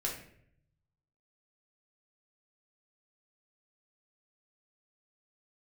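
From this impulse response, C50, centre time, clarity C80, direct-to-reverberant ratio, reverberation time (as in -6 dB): 5.5 dB, 31 ms, 9.5 dB, -3.0 dB, 0.65 s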